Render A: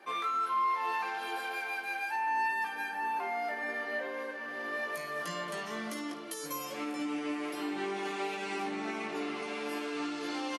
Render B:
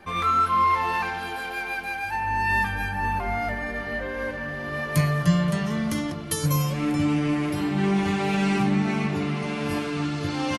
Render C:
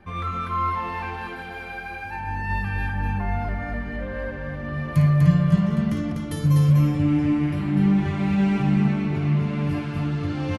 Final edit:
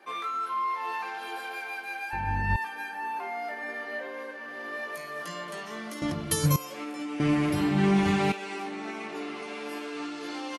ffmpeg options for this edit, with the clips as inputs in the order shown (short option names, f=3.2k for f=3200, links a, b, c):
-filter_complex "[1:a]asplit=2[a][b];[0:a]asplit=4[c][d][e][f];[c]atrim=end=2.132[g];[2:a]atrim=start=2.128:end=2.562[h];[d]atrim=start=2.558:end=6.022[i];[a]atrim=start=6.018:end=6.562[j];[e]atrim=start=6.558:end=7.202[k];[b]atrim=start=7.198:end=8.322[l];[f]atrim=start=8.318[m];[g][h]acrossfade=d=0.004:c1=hsin:c2=hsin[n];[n][i]acrossfade=d=0.004:c1=hsin:c2=hsin[o];[o][j]acrossfade=d=0.004:c1=hsin:c2=hsin[p];[p][k]acrossfade=d=0.004:c1=hsin:c2=hsin[q];[q][l]acrossfade=d=0.004:c1=hsin:c2=hsin[r];[r][m]acrossfade=d=0.004:c1=hsin:c2=hsin"